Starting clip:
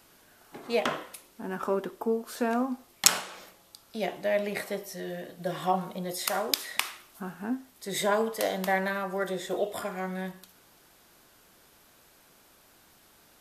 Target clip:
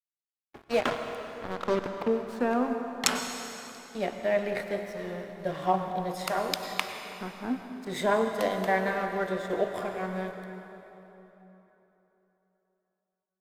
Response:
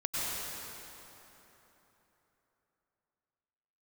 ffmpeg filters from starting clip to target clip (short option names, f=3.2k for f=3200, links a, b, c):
-filter_complex "[0:a]aeval=exprs='sgn(val(0))*max(abs(val(0))-0.00631,0)':c=same,asettb=1/sr,asplit=3[a][b][c];[a]atrim=end=0.644[d];[b]atrim=start=0.64:end=2.08,asetpts=PTS-STARTPTS,afade=t=in:d=0.004:c=qsin,afade=t=out:st=1.436:d=0.004:c=qsin,acrusher=bits=4:mix=0:aa=0.5[e];[c]atrim=start=2.076[f];[d][e]acrossfade=d=0.004:c1=hsin:c2=qsin[g];[g][f]acrossfade=d=0.004:c1=qsin:c2=hsin,lowpass=f=2.5k:p=1,asplit=2[h][i];[1:a]atrim=start_sample=2205[j];[i][j]afir=irnorm=-1:irlink=0,volume=-10.5dB[k];[h][k]amix=inputs=2:normalize=0"